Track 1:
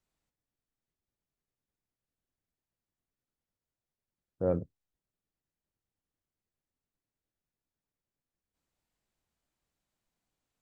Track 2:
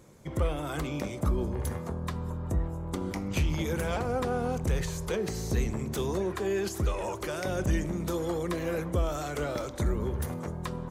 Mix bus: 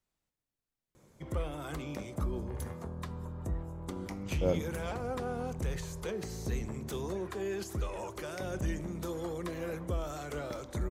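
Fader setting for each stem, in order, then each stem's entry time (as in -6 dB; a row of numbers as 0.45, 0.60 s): -1.0, -6.5 dB; 0.00, 0.95 s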